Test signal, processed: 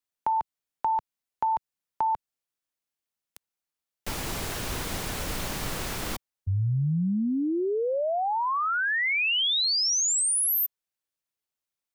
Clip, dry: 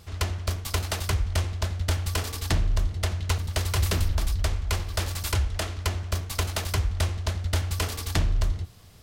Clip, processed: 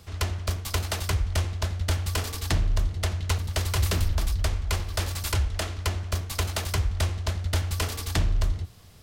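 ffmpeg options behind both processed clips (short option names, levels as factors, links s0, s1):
-filter_complex "[0:a]acrossover=split=140|3000[s0][s1][s2];[s1]acompressor=threshold=0.0562:ratio=3[s3];[s0][s3][s2]amix=inputs=3:normalize=0"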